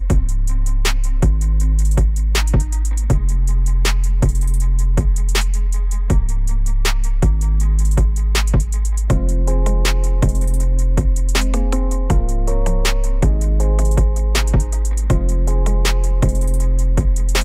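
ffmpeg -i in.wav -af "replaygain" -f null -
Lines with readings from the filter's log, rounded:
track_gain = +2.4 dB
track_peak = 0.353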